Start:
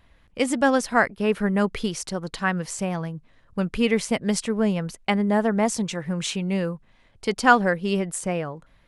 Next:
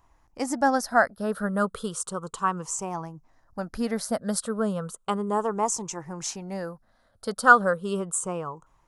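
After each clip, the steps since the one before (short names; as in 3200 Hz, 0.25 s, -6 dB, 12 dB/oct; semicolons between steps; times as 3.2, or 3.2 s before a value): moving spectral ripple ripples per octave 0.71, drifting -0.34 Hz, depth 10 dB; EQ curve 260 Hz 0 dB, 1300 Hz +11 dB, 2200 Hz -9 dB, 6900 Hz +9 dB; gain -9 dB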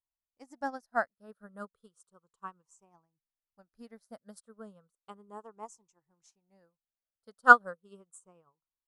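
upward expander 2.5:1, over -38 dBFS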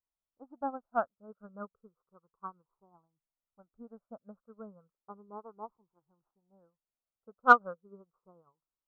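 steep low-pass 1400 Hz 72 dB/oct; in parallel at -9 dB: soft clip -16.5 dBFS, distortion -9 dB; on the sum: gain -2 dB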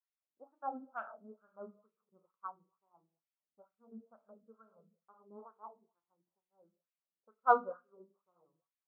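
reverb RT60 0.40 s, pre-delay 5 ms, DRR 4 dB; LFO band-pass sine 2.2 Hz 260–2400 Hz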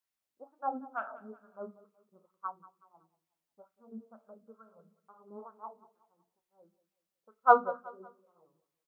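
feedback echo 0.186 s, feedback 39%, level -18.5 dB; gain +5.5 dB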